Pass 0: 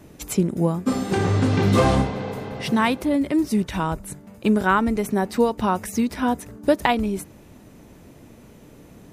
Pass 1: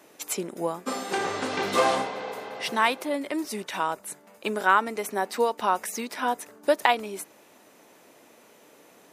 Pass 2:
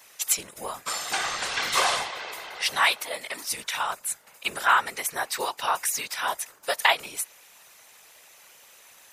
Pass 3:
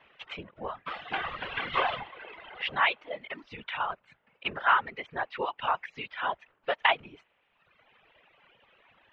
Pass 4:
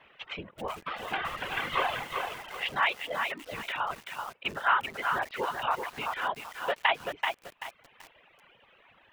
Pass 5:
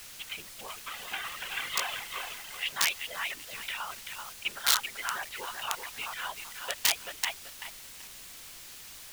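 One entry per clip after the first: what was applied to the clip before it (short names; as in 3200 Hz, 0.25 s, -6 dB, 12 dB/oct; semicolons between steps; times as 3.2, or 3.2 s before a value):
HPF 540 Hz 12 dB/oct
passive tone stack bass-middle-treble 10-0-10; whisperiser; gain +8.5 dB
elliptic low-pass 3100 Hz, stop band 80 dB; low shelf 340 Hz +9.5 dB; reverb removal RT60 1.2 s; gain -3 dB
in parallel at -2 dB: compressor 5:1, threshold -36 dBFS, peak gain reduction 16 dB; on the sum: lo-fi delay 0.384 s, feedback 35%, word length 7-bit, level -4.5 dB; gain -3 dB
wrapped overs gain 17 dB; added noise pink -46 dBFS; tilt shelf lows -9.5 dB, about 1500 Hz; gain -4.5 dB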